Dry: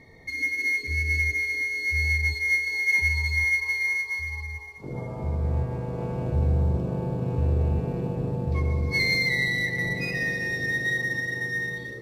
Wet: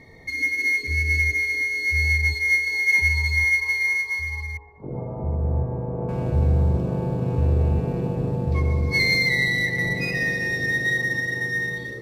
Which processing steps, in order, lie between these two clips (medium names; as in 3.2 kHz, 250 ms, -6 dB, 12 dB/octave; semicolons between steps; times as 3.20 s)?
4.57–6.09 s: Chebyshev low-pass 820 Hz, order 2; trim +3.5 dB